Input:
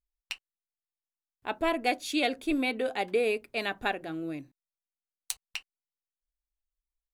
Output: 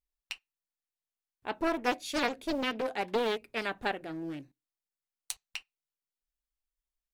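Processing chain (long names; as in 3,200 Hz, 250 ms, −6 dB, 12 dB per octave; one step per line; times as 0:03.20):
on a send at −22.5 dB: convolution reverb RT60 0.25 s, pre-delay 3 ms
on the sum: highs frequency-modulated by the lows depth 0.73 ms
level −2.5 dB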